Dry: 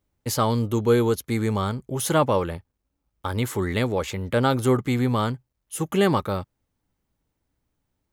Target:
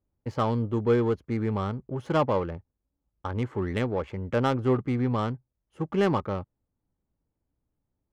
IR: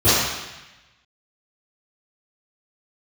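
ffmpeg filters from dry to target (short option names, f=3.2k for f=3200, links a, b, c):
-af "adynamicsmooth=sensitivity=1:basefreq=1.2k,bandreject=f=3.7k:w=13,volume=-3.5dB"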